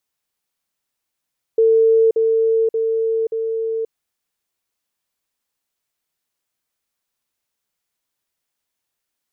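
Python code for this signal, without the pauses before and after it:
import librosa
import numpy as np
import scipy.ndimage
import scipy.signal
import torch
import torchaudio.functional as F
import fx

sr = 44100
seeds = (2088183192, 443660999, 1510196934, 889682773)

y = fx.level_ladder(sr, hz=449.0, from_db=-10.0, step_db=-3.0, steps=4, dwell_s=0.53, gap_s=0.05)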